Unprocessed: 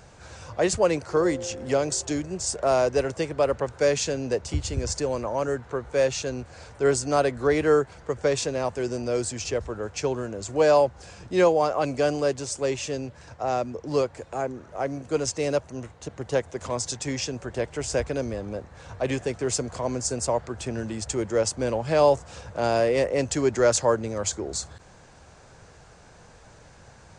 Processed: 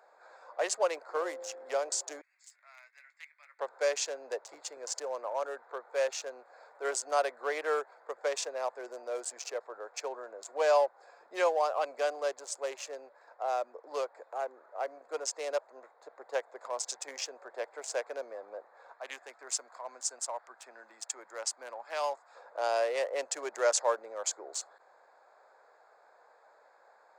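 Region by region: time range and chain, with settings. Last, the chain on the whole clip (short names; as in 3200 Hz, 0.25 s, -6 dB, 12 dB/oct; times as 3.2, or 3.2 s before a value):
2.21–3.59 ladder high-pass 2000 Hz, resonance 75% + doubler 19 ms -10 dB
18.92–22.35 HPF 210 Hz 24 dB/oct + bell 470 Hz -12.5 dB 1.3 oct
whole clip: Wiener smoothing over 15 samples; HPF 560 Hz 24 dB/oct; gain -4 dB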